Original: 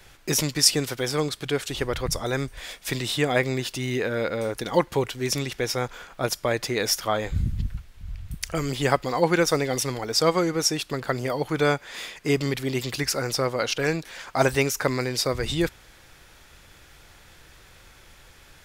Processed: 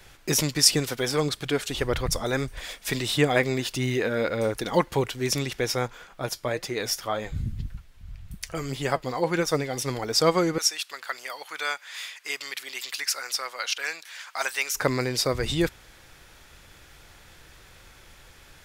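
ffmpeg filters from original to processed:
-filter_complex "[0:a]asettb=1/sr,asplit=3[a][b][c];[a]atrim=end=0.704[d];[b]atrim=start=0.7:end=5.01,asetpts=PTS-STARTPTS,afade=t=in:d=0.004:c=qsin,afade=t=out:st=4.306:d=0.004:c=qsin,aphaser=in_gain=1:out_gain=1:delay=4.9:decay=0.29:speed=1.6:type=sinusoidal[e];[c]atrim=start=5.006[f];[d][e]acrossfade=d=0.004:c1=hsin:c2=qsin[g];[g][f]acrossfade=d=0.004:c1=qsin:c2=hsin,asplit=3[h][i][j];[h]afade=t=out:st=5.86:d=0.02[k];[i]flanger=delay=4.8:depth=4.5:regen=61:speed=1.8:shape=triangular,afade=t=in:st=5.86:d=0.02,afade=t=out:st=9.86:d=0.02[l];[j]afade=t=in:st=9.86:d=0.02[m];[k][l][m]amix=inputs=3:normalize=0,asettb=1/sr,asplit=3[n][o][p];[n]atrim=end=10.584[q];[o]atrim=start=10.58:end=14.75,asetpts=PTS-STARTPTS,afade=t=in:d=0.004:c=qsin,afade=t=out:st=4.166:d=0.004:c=qsin,highpass=1.3k[r];[p]atrim=start=14.746[s];[q][r]acrossfade=d=0.004:c1=hsin:c2=qsin[t];[t][s]acrossfade=d=0.004:c1=qsin:c2=hsin"

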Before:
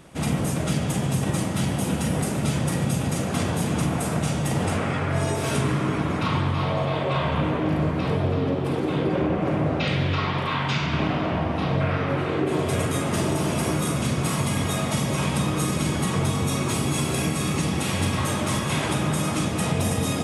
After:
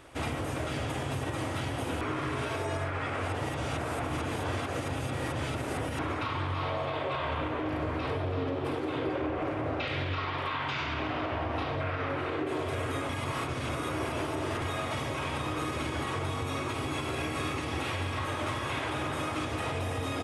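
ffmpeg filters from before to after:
-filter_complex "[0:a]asplit=5[a][b][c][d][e];[a]atrim=end=2.012[f];[b]atrim=start=2.008:end=5.992,asetpts=PTS-STARTPTS,areverse[g];[c]atrim=start=5.988:end=13.092[h];[d]atrim=start=13.088:end=14.622,asetpts=PTS-STARTPTS,areverse[i];[e]atrim=start=14.618[j];[f][g]acrossfade=d=0.004:c1=hsin:c2=hsin[k];[k][h]acrossfade=d=0.004:c1=hsin:c2=hsin[l];[l][i]acrossfade=d=0.004:c1=hsin:c2=hsin[m];[m][j]acrossfade=d=0.004:c1=hsin:c2=hsin,acrossover=split=3900[n][o];[o]acompressor=threshold=-40dB:ratio=4:attack=1:release=60[p];[n][p]amix=inputs=2:normalize=0,firequalizer=gain_entry='entry(110,0);entry(180,-20);entry(270,-1);entry(1300,3);entry(6700,-3)':delay=0.05:min_phase=1,alimiter=limit=-21dB:level=0:latency=1:release=129,volume=-2.5dB"

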